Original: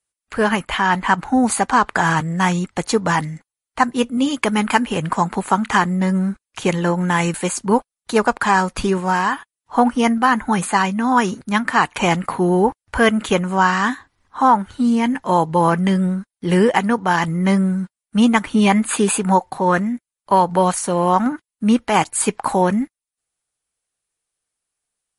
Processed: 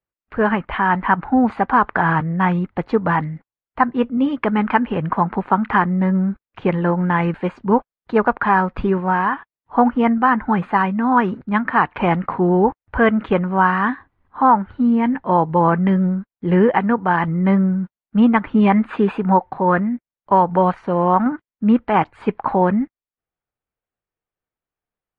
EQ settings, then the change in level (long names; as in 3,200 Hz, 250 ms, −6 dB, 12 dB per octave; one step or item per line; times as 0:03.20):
head-to-tape spacing loss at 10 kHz 22 dB
dynamic equaliser 1,500 Hz, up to +4 dB, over −30 dBFS, Q 0.79
high-frequency loss of the air 380 metres
+1.5 dB